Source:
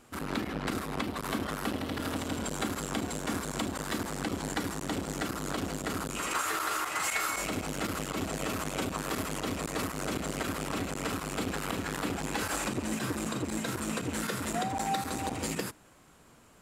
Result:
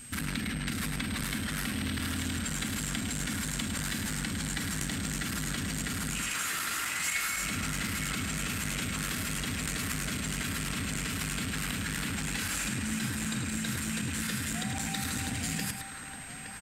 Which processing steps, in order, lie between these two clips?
high-order bell 620 Hz -15 dB 2.3 oct; in parallel at +0.5 dB: compressor with a negative ratio -43 dBFS, ratio -0.5; on the sum: delay 105 ms -8 dB; whistle 8.3 kHz -46 dBFS; band-passed feedback delay 866 ms, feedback 70%, band-pass 1.1 kHz, level -5 dB

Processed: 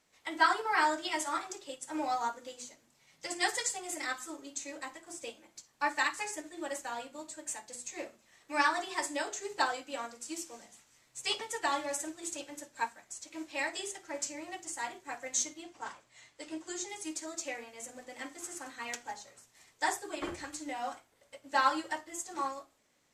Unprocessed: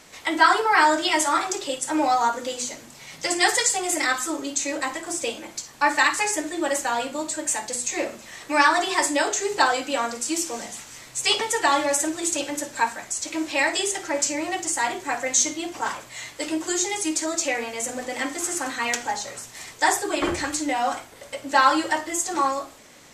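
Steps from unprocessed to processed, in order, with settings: 15.63–16.88 s: low-pass 9.1 kHz 12 dB/octave; upward expansion 1.5:1, over -42 dBFS; trim -8.5 dB

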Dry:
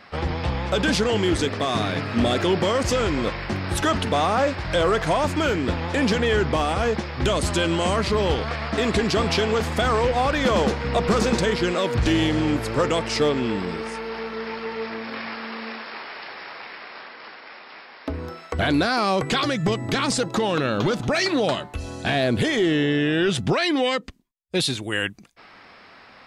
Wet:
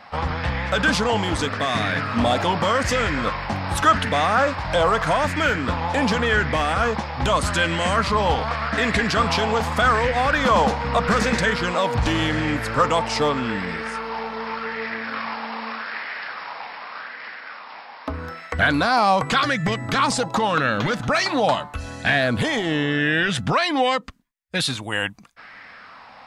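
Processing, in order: peaking EQ 370 Hz -11.5 dB 0.3 oct; sweeping bell 0.84 Hz 830–1900 Hz +10 dB

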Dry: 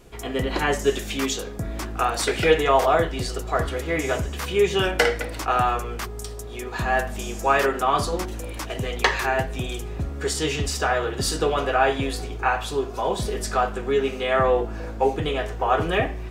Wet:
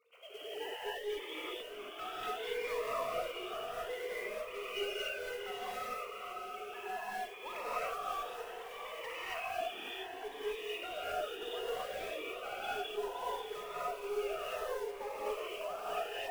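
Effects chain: formants replaced by sine waves; high-pass 1.3 kHz 6 dB/octave; peaking EQ 1.7 kHz -12 dB 0.25 oct; peak limiter -22 dBFS, peak gain reduction 11.5 dB; compression 1.5:1, threshold -49 dBFS, peak gain reduction 8.5 dB; one-sided clip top -36 dBFS, bottom -32.5 dBFS; short-mantissa float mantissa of 2-bit; echo that smears into a reverb 661 ms, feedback 48%, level -8 dB; gated-style reverb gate 300 ms rising, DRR -8 dB; Shepard-style phaser rising 0.65 Hz; trim -4.5 dB

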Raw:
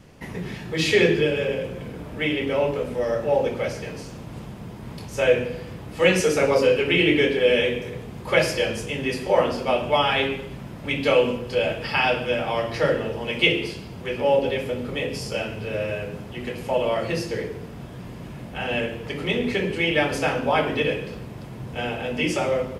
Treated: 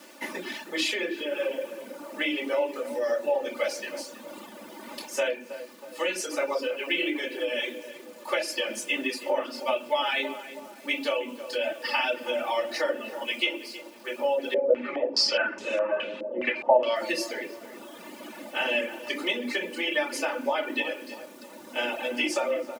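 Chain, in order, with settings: reverb removal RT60 1.8 s; gain riding within 4 dB 0.5 s; bit crusher 9-bit; high-pass 250 Hz 24 dB/octave; compression, threshold -24 dBFS, peak gain reduction 11 dB; bass shelf 430 Hz -7.5 dB; comb 3.4 ms, depth 83%; filtered feedback delay 321 ms, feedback 54%, low-pass 1.4 kHz, level -11 dB; 14.54–16.96 s: step-sequenced low-pass 4.8 Hz 530–6800 Hz

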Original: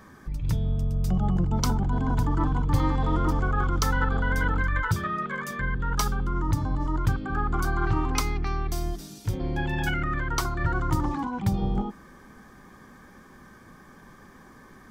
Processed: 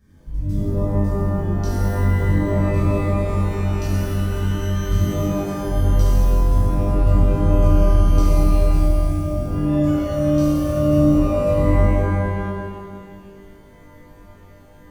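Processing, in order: amplifier tone stack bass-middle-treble 10-0-1; pitch-shifted reverb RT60 1.7 s, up +12 st, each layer -2 dB, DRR -10 dB; trim +5 dB

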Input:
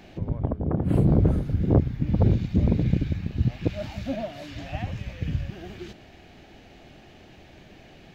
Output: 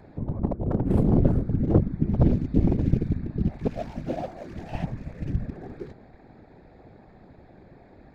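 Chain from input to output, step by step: local Wiener filter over 15 samples; whisper effect

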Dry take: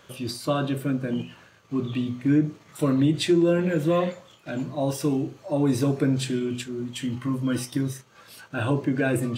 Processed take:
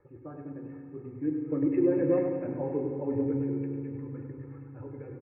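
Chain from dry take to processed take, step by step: Doppler pass-by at 4.14 s, 11 m/s, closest 8.4 m; steep low-pass 2.4 kHz 96 dB/octave; band-stop 1.4 kHz, Q 12; level-controlled noise filter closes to 1.9 kHz, open at -22 dBFS; tilt shelf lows +4.5 dB, about 660 Hz; hum notches 60/120/180 Hz; comb 2.3 ms, depth 94%; dynamic bell 160 Hz, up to -7 dB, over -46 dBFS, Q 5.6; reverse; upward compressor, threshold -35 dBFS; reverse; tempo 1.8×; on a send: feedback delay 101 ms, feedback 55%, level -8 dB; on the sum: FDN reverb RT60 3 s, low-frequency decay 1.2×, high-frequency decay 0.9×, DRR 5.5 dB; trim -6.5 dB

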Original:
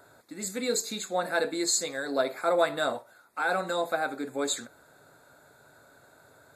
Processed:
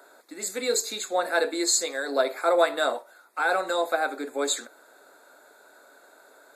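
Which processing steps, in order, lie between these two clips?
high-pass 300 Hz 24 dB/octave; trim +3.5 dB

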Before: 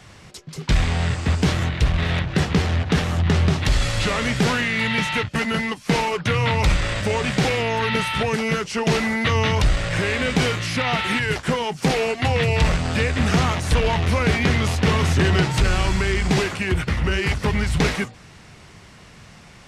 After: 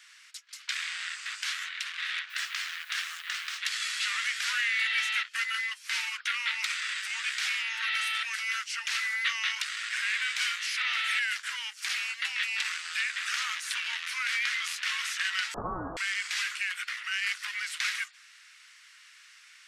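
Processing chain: steep high-pass 1.4 kHz 36 dB/octave; 2.29–3.57 s: added noise blue -54 dBFS; 15.54–15.97 s: frequency inversion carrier 2.6 kHz; trim -4 dB

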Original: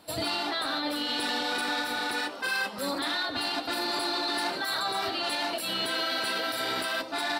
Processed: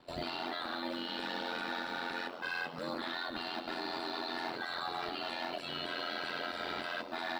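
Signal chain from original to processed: in parallel at 0 dB: peak limiter -26.5 dBFS, peak gain reduction 7.5 dB; on the sum: distance through air 150 m; short-mantissa float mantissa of 4-bit; ring modulator 43 Hz; trim -7.5 dB

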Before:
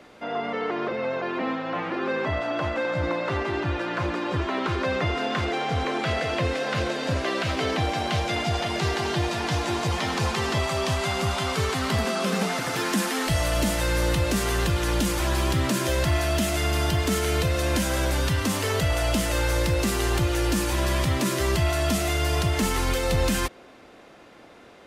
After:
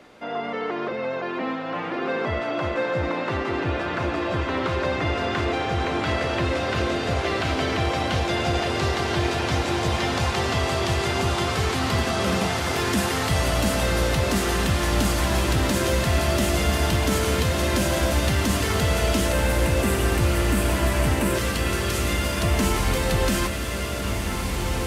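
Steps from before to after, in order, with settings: 19.33–21.35 s: spectral selection erased 3–7.4 kHz; 21.38–22.42 s: elliptic high-pass 1.1 kHz; echo that smears into a reverb 1786 ms, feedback 63%, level -4 dB

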